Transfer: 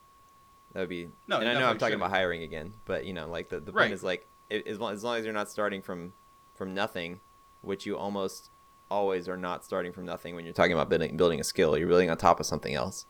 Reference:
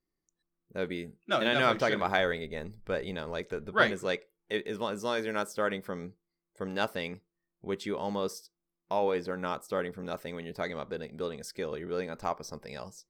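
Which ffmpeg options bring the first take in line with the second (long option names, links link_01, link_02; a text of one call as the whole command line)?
ffmpeg -i in.wav -af "bandreject=frequency=1100:width=30,agate=range=-21dB:threshold=-50dB,asetnsamples=nb_out_samples=441:pad=0,asendcmd='10.56 volume volume -11dB',volume=0dB" out.wav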